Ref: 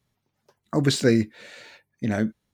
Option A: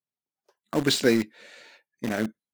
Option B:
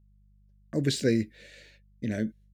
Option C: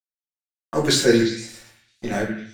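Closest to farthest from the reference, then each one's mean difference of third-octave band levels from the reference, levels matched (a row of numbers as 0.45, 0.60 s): B, A, C; 2.5, 5.0, 8.0 dB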